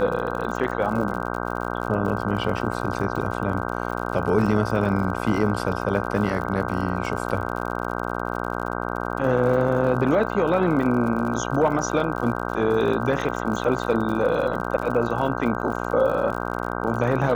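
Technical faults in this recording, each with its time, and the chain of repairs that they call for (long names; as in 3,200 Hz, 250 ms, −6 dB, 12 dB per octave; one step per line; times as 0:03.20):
mains buzz 60 Hz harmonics 26 −28 dBFS
surface crackle 59 per second −31 dBFS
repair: click removal
hum removal 60 Hz, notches 26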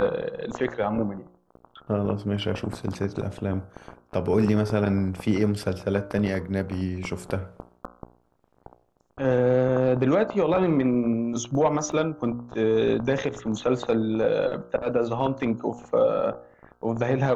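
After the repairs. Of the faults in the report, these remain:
none of them is left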